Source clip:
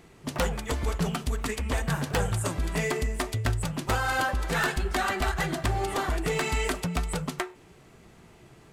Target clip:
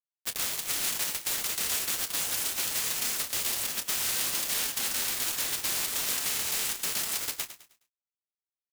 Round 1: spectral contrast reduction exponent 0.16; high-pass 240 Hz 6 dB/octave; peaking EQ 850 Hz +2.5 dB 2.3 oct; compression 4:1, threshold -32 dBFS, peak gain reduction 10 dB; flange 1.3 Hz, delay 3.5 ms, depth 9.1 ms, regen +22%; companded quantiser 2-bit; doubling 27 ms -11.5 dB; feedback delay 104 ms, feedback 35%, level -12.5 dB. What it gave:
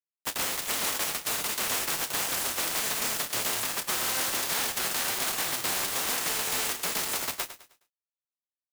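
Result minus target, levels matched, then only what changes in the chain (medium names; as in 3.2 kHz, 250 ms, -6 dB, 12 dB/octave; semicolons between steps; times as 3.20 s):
1 kHz band +7.0 dB; 250 Hz band +5.0 dB
change: high-pass 620 Hz 6 dB/octave; change: peaking EQ 850 Hz -8.5 dB 2.3 oct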